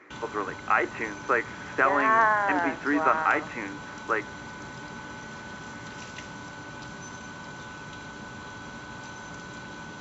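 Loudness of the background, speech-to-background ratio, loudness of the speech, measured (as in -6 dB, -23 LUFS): -40.0 LUFS, 14.5 dB, -25.5 LUFS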